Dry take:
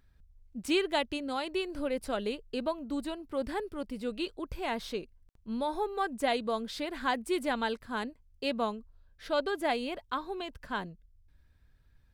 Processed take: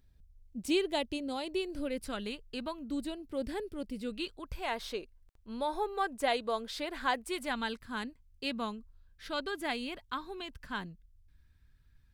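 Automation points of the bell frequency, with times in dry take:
bell -9.5 dB 1.4 oct
1.6 s 1400 Hz
2.49 s 360 Hz
3.04 s 1100 Hz
3.9 s 1100 Hz
4.87 s 170 Hz
7.15 s 170 Hz
7.61 s 590 Hz

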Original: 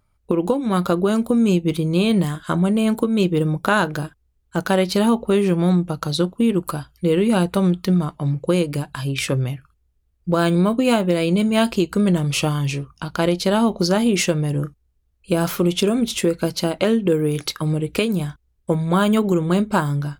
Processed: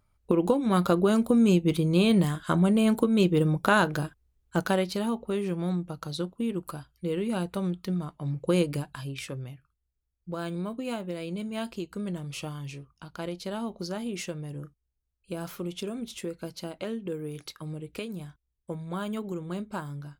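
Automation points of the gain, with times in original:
4.57 s -4 dB
4.99 s -12 dB
8.17 s -12 dB
8.61 s -4.5 dB
9.33 s -16 dB

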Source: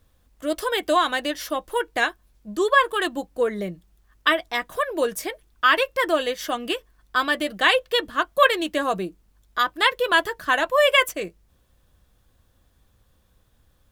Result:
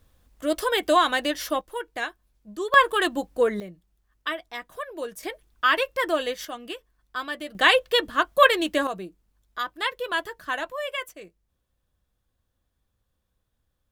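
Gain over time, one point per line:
+0.5 dB
from 1.61 s -8 dB
from 2.74 s +1 dB
from 3.6 s -10 dB
from 5.23 s -3 dB
from 6.45 s -9.5 dB
from 7.55 s +0.5 dB
from 8.87 s -8 dB
from 10.72 s -14 dB

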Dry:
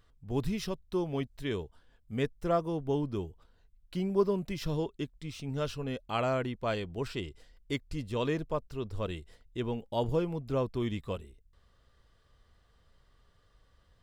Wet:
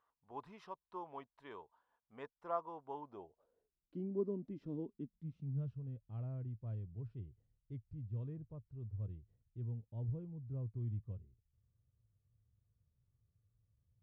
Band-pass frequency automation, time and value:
band-pass, Q 4
2.99 s 970 Hz
4.01 s 270 Hz
4.72 s 270 Hz
5.9 s 110 Hz

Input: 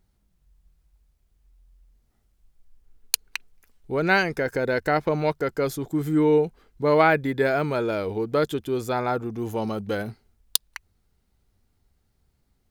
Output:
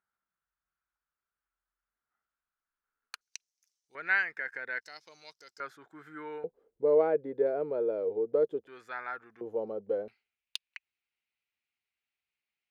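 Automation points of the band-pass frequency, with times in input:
band-pass, Q 4.5
1400 Hz
from 3.21 s 5900 Hz
from 3.95 s 1800 Hz
from 4.81 s 5400 Hz
from 5.6 s 1500 Hz
from 6.44 s 480 Hz
from 8.67 s 1700 Hz
from 9.41 s 490 Hz
from 10.08 s 2500 Hz

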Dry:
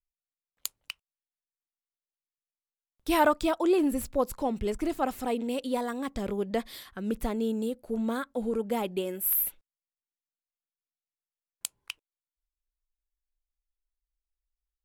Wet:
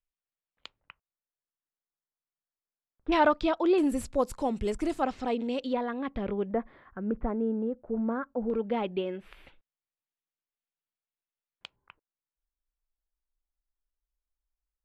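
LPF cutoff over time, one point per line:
LPF 24 dB/oct
3300 Hz
from 0.8 s 1800 Hz
from 3.12 s 4700 Hz
from 3.78 s 9800 Hz
from 5.02 s 5400 Hz
from 5.73 s 3100 Hz
from 6.51 s 1600 Hz
from 8.5 s 3400 Hz
from 11.76 s 1600 Hz

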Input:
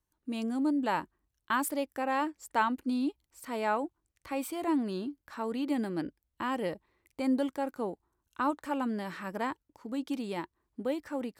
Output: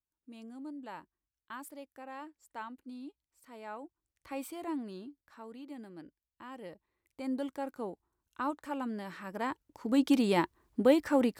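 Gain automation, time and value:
3.64 s -15 dB
4.36 s -5 dB
5.68 s -15 dB
6.42 s -15 dB
7.56 s -4.5 dB
9.28 s -4.5 dB
10 s +8.5 dB

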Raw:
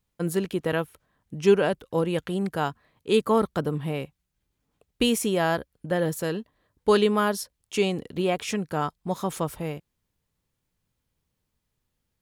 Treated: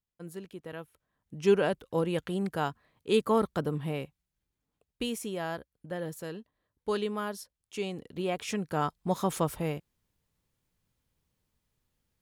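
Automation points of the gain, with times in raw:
0.73 s -16 dB
1.56 s -4 dB
3.94 s -4 dB
5.07 s -11 dB
7.77 s -11 dB
9.03 s -0.5 dB

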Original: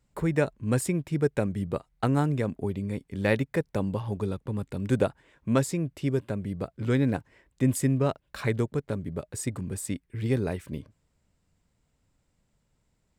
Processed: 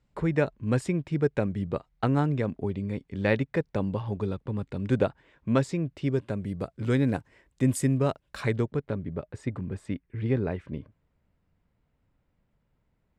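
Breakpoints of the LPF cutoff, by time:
5.99 s 4700 Hz
6.59 s 11000 Hz
8.38 s 11000 Hz
8.64 s 4300 Hz
9.26 s 2500 Hz

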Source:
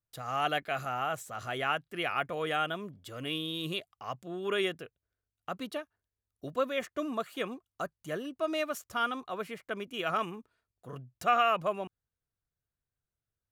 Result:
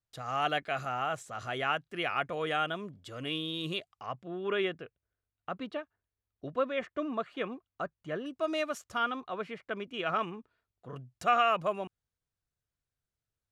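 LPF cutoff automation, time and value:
7700 Hz
from 4.06 s 3000 Hz
from 8.26 s 8200 Hz
from 8.98 s 4100 Hz
from 10.96 s 9300 Hz

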